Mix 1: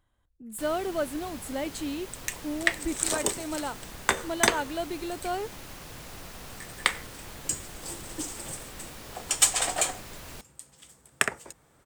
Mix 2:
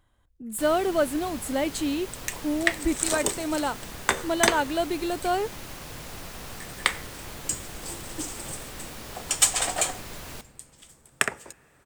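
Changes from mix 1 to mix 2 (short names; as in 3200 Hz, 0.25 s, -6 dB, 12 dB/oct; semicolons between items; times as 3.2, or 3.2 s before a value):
speech +6.0 dB; reverb: on, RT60 2.1 s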